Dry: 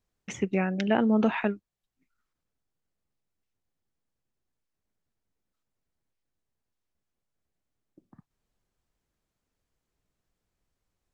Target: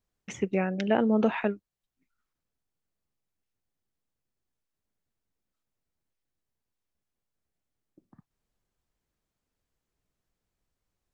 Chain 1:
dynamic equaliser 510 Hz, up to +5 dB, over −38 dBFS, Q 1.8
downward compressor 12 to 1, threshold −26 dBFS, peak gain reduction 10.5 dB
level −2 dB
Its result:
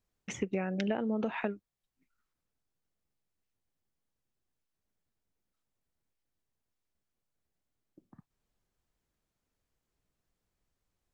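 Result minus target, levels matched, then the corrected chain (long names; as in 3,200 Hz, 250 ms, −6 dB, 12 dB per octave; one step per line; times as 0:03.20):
downward compressor: peak gain reduction +10.5 dB
dynamic equaliser 510 Hz, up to +5 dB, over −38 dBFS, Q 1.8
level −2 dB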